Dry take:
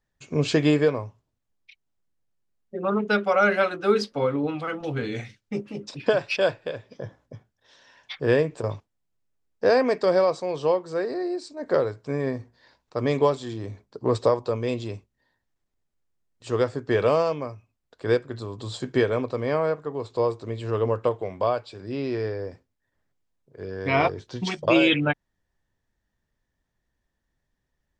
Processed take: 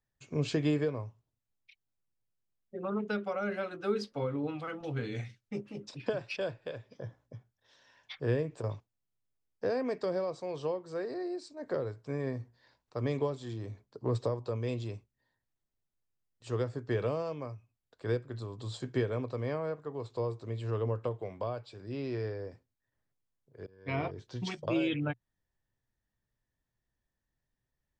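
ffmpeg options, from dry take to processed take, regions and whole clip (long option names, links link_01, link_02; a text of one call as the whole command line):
ffmpeg -i in.wav -filter_complex "[0:a]asettb=1/sr,asplit=3[link_01][link_02][link_03];[link_01]atrim=end=23.664[link_04];[link_02]atrim=start=23.66:end=24.11,asetpts=PTS-STARTPTS,afade=type=in:duration=0.004:curve=qsin,afade=type=out:start_time=0.446:duration=0.004:curve=qsin,lowpass=5300,agate=range=-33dB:threshold=-23dB:ratio=3:release=100:detection=peak,bandreject=frequency=110.9:width_type=h:width=4,bandreject=frequency=221.8:width_type=h:width=4,bandreject=frequency=332.7:width_type=h:width=4,bandreject=frequency=443.6:width_type=h:width=4,bandreject=frequency=554.5:width_type=h:width=4,bandreject=frequency=665.4:width_type=h:width=4,bandreject=frequency=776.3:width_type=h:width=4,bandreject=frequency=887.2:width_type=h:width=4,bandreject=frequency=998.1:width_type=h:width=4,bandreject=frequency=1109:width_type=h:width=4,bandreject=frequency=1219.9:width_type=h:width=4,bandreject=frequency=1330.8:width_type=h:width=4,bandreject=frequency=1441.7:width_type=h:width=4,bandreject=frequency=1552.6:width_type=h:width=4,bandreject=frequency=1663.5:width_type=h:width=4,bandreject=frequency=1774.4:width_type=h:width=4,bandreject=frequency=1885.3:width_type=h:width=4,bandreject=frequency=1996.2:width_type=h:width=4,bandreject=frequency=2107.1:width_type=h:width=4,bandreject=frequency=2218:width_type=h:width=4,bandreject=frequency=2328.9:width_type=h:width=4,bandreject=frequency=2439.8:width_type=h:width=4,bandreject=frequency=2550.7:width_type=h:width=4,bandreject=frequency=2661.6:width_type=h:width=4,bandreject=frequency=2772.5:width_type=h:width=4,bandreject=frequency=2883.4:width_type=h:width=4,bandreject=frequency=2994.3:width_type=h:width=4,bandreject=frequency=3105.2:width_type=h:width=4,bandreject=frequency=3216.1:width_type=h:width=4,bandreject=frequency=3327:width_type=h:width=4[link_05];[link_03]atrim=start=24.106[link_06];[link_04][link_05]acrossfade=duration=0.004:curve1=hsin:curve2=qsin[link_07];[link_07][link_06]acrossfade=duration=0.004:curve1=qsin:curve2=hsin,equalizer=frequency=120:width_type=o:width=0.31:gain=7,acrossover=split=420[link_08][link_09];[link_09]acompressor=threshold=-27dB:ratio=5[link_10];[link_08][link_10]amix=inputs=2:normalize=0,volume=-8.5dB" out.wav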